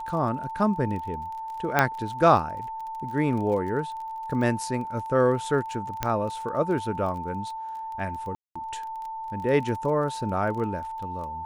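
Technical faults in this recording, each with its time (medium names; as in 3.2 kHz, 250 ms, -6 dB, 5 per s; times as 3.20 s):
crackle 25 per s -35 dBFS
whine 890 Hz -32 dBFS
1.79 s: pop -6 dBFS
6.03 s: pop -10 dBFS
8.35–8.55 s: dropout 205 ms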